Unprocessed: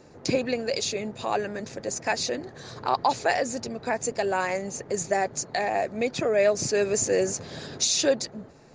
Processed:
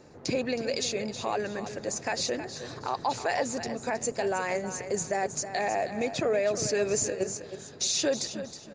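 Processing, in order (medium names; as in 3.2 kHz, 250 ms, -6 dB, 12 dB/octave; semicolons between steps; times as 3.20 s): peak limiter -17 dBFS, peak gain reduction 6.5 dB; 7.10–7.81 s: level held to a coarse grid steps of 12 dB; feedback delay 318 ms, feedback 28%, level -11 dB; trim -1.5 dB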